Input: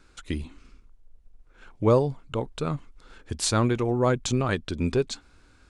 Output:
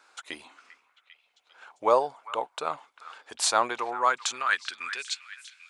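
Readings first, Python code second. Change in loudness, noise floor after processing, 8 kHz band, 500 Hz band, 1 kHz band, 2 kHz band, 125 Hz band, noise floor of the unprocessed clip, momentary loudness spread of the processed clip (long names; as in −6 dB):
−1.5 dB, −70 dBFS, +1.0 dB, −4.5 dB, +5.5 dB, +6.0 dB, below −30 dB, −58 dBFS, 18 LU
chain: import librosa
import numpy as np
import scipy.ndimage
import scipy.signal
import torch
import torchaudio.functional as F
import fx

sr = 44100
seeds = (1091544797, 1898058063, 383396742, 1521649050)

y = fx.filter_sweep_highpass(x, sr, from_hz=780.0, to_hz=2300.0, start_s=3.62, end_s=5.14, q=2.1)
y = fx.echo_stepped(y, sr, ms=397, hz=1600.0, octaves=0.7, feedback_pct=70, wet_db=-11.0)
y = y * librosa.db_to_amplitude(1.0)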